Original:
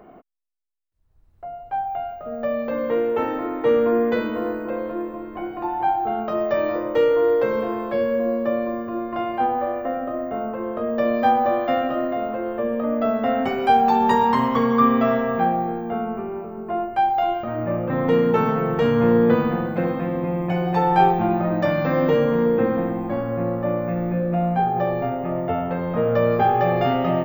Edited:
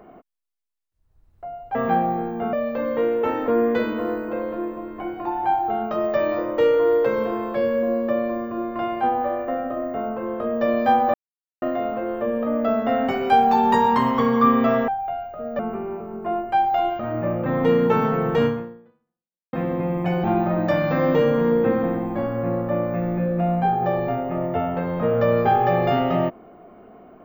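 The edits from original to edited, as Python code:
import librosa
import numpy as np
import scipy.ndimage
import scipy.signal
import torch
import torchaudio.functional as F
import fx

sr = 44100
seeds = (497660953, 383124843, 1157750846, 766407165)

y = fx.edit(x, sr, fx.swap(start_s=1.75, length_s=0.71, other_s=15.25, other_length_s=0.78),
    fx.cut(start_s=3.41, length_s=0.44),
    fx.silence(start_s=11.51, length_s=0.48),
    fx.fade_out_span(start_s=18.9, length_s=1.07, curve='exp'),
    fx.cut(start_s=20.68, length_s=0.5), tone=tone)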